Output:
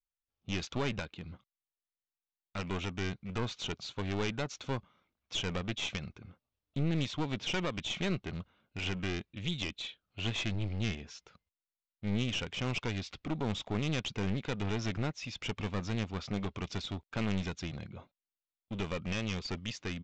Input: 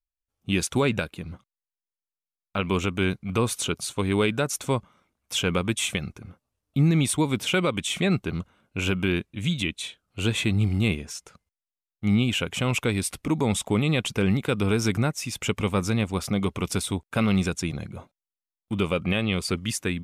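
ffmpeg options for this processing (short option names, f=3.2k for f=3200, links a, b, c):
-af "lowpass=f=3.9k:t=q:w=1.5,aresample=16000,aeval=exprs='clip(val(0),-1,0.0355)':c=same,aresample=44100,volume=-8.5dB"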